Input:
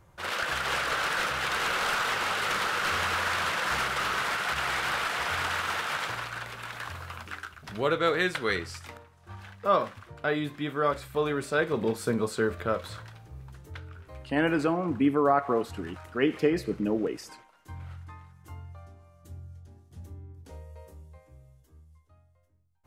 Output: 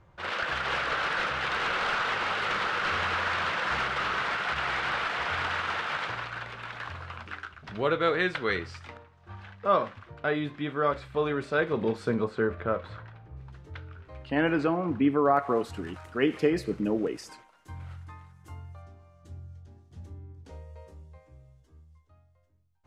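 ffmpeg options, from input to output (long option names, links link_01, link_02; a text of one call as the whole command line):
ffmpeg -i in.wav -af "asetnsamples=nb_out_samples=441:pad=0,asendcmd='12.24 lowpass f 2200;13.37 lowpass f 4200;15.37 lowpass f 11000;18.82 lowpass f 6200',lowpass=3900" out.wav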